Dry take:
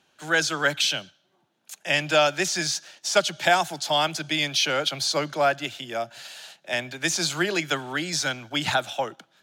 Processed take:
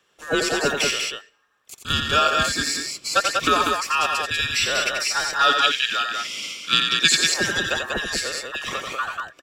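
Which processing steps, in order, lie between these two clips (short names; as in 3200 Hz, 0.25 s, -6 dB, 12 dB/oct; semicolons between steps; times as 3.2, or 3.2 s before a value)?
band inversion scrambler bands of 2000 Hz; 5.39–7.15 weighting filter D; 8.19–8.91 compressor 5:1, threshold -27 dBFS, peak gain reduction 8.5 dB; loudspeakers at several distances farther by 30 m -6 dB, 66 m -4 dB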